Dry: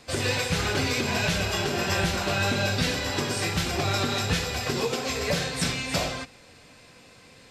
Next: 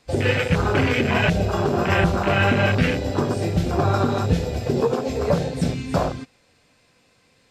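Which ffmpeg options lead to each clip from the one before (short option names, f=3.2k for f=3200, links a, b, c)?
-af "afwtdn=0.0447,volume=8dB"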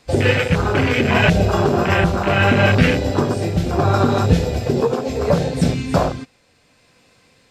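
-af "tremolo=f=0.7:d=0.33,volume=5.5dB"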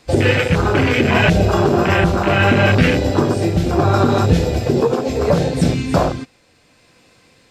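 -filter_complex "[0:a]equalizer=f=330:w=7.7:g=5.5,asplit=2[a][b];[b]alimiter=limit=-10dB:level=0:latency=1,volume=-2dB[c];[a][c]amix=inputs=2:normalize=0,volume=-2.5dB"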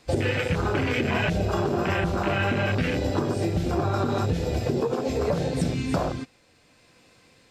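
-af "acompressor=threshold=-16dB:ratio=6,volume=-5dB"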